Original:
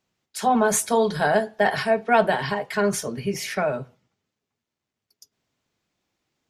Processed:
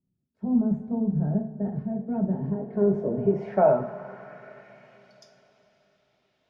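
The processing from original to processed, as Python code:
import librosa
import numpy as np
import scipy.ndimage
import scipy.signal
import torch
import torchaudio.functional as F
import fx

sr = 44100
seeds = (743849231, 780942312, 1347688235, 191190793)

y = fx.rev_double_slope(x, sr, seeds[0], early_s=0.39, late_s=4.1, knee_db=-18, drr_db=3.5)
y = fx.filter_sweep_lowpass(y, sr, from_hz=200.0, to_hz=3500.0, start_s=2.27, end_s=5.14, q=1.6)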